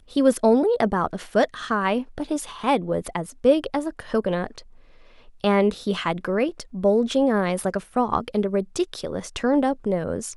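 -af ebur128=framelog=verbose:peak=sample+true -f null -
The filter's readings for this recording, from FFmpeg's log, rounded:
Integrated loudness:
  I:         -23.3 LUFS
  Threshold: -33.6 LUFS
Loudness range:
  LRA:         2.6 LU
  Threshold: -44.0 LUFS
  LRA low:   -25.5 LUFS
  LRA high:  -22.9 LUFS
Sample peak:
  Peak:       -6.0 dBFS
True peak:
  Peak:       -6.0 dBFS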